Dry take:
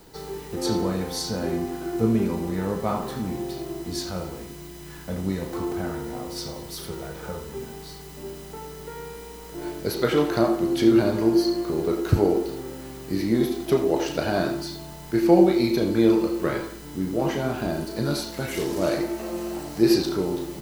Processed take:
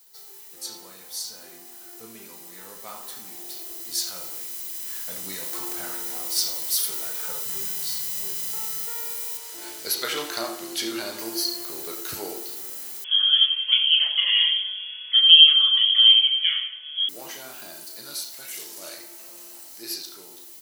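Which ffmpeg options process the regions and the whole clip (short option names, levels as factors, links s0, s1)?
-filter_complex "[0:a]asettb=1/sr,asplit=3[s0][s1][s2];[s0]atrim=end=7.454[s3];[s1]atrim=start=7.45:end=8.86,asetpts=PTS-STARTPTS,afade=t=in:d=0.004:c=qsin,afade=t=out:st=1.406:d=0.004:c=qsin,lowshelf=f=220:t=q:w=3:g=7,asplit=2[s4][s5];[s5]adelay=31,volume=0.501[s6];[s4][s6]amix=inputs=2:normalize=0,atrim=end_sample=62181[s7];[s2]atrim=start=8.856[s8];[s3][s7]acrossfade=d=0.004:c1=hsin:c2=qsin[s9];[s9][s8]acrossfade=d=0.004:c1=qsin:c2=hsin,asettb=1/sr,asplit=3[s10][s11][s12];[s10]atrim=end=9.374[s13];[s11]atrim=start=9.37:end=11.19,asetpts=PTS-STARTPTS,afade=t=in:d=0.004:c=qsin,afade=t=out:st=1.816:d=0.004:c=qsin,highshelf=f=11000:g=-10.5,bandreject=f=60:t=h:w=6,bandreject=f=120:t=h:w=6,bandreject=f=180:t=h:w=6,bandreject=f=240:t=h:w=6,bandreject=f=300:t=h:w=6,bandreject=f=360:t=h:w=6,bandreject=f=420:t=h:w=6,bandreject=f=480:t=h:w=6,bandreject=f=540:t=h:w=6[s14];[s12]atrim=start=11.186[s15];[s13][s14]acrossfade=d=0.004:c1=hsin:c2=qsin[s16];[s16][s15]acrossfade=d=0.004:c1=qsin:c2=hsin,asettb=1/sr,asplit=3[s17][s18][s19];[s17]atrim=end=13.044[s20];[s18]atrim=start=13.04:end=17.09,asetpts=PTS-STARTPTS,afade=t=in:d=0.004:c=qsin,afade=t=out:st=4.046:d=0.004:c=qsin,highpass=93,aecho=1:1:6.4:0.89,atrim=end_sample=178605,lowpass=f=3000:t=q:w=0.5098,lowpass=f=3000:t=q:w=0.6013,lowpass=f=3000:t=q:w=0.9,lowpass=f=3000:t=q:w=2.563,afreqshift=-3500[s21];[s19]atrim=start=17.086[s22];[s20][s21]acrossfade=d=0.004:c1=hsin:c2=qsin[s23];[s23][s22]acrossfade=d=0.004:c1=qsin:c2=hsin,aderivative,dynaudnorm=f=500:g=17:m=5.31"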